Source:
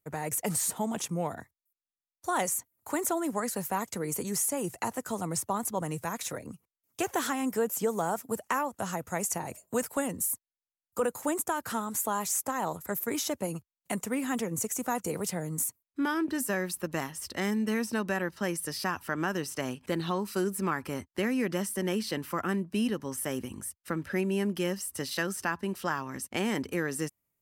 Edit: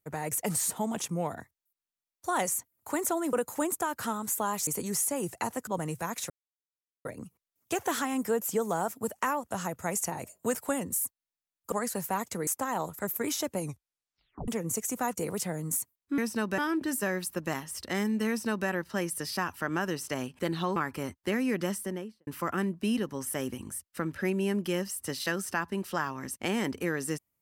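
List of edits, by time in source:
0:03.33–0:04.08: swap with 0:11.00–0:12.34
0:05.08–0:05.70: remove
0:06.33: splice in silence 0.75 s
0:13.46: tape stop 0.89 s
0:17.75–0:18.15: duplicate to 0:16.05
0:20.23–0:20.67: remove
0:21.59–0:22.18: fade out and dull

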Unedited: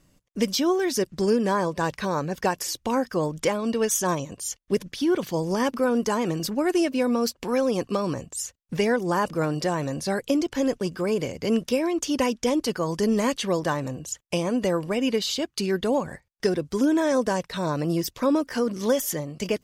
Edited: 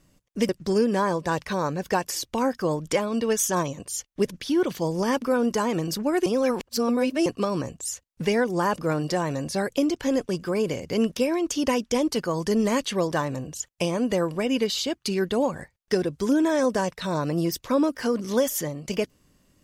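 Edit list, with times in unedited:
0:00.49–0:01.01: remove
0:06.78–0:07.78: reverse

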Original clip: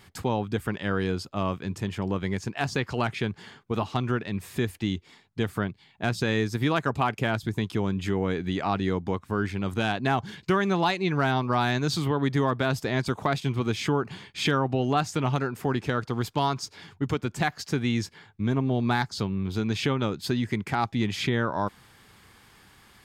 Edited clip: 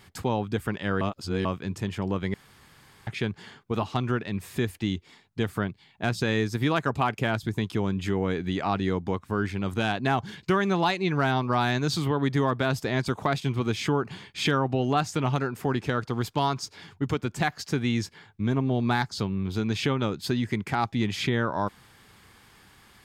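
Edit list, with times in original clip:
0:01.01–0:01.45: reverse
0:02.34–0:03.07: fill with room tone

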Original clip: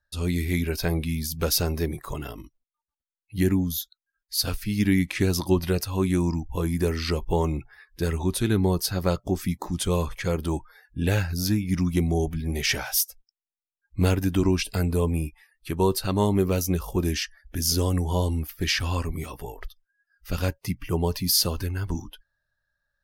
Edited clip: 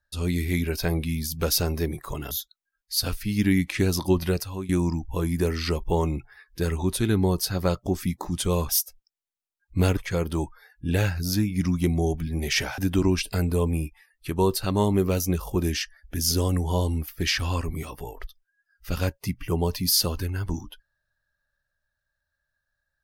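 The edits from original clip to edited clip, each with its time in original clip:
0:02.31–0:03.72: remove
0:05.73–0:06.10: fade out, to −15.5 dB
0:12.91–0:14.19: move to 0:10.10

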